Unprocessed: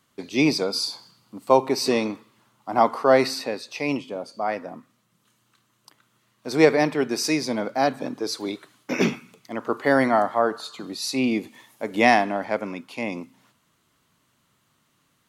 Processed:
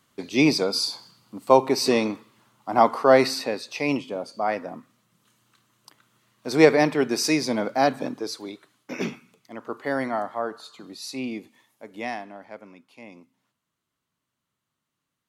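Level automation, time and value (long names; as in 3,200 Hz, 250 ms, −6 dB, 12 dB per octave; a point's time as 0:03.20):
0:08.03 +1 dB
0:08.50 −7.5 dB
0:11.13 −7.5 dB
0:12.19 −15.5 dB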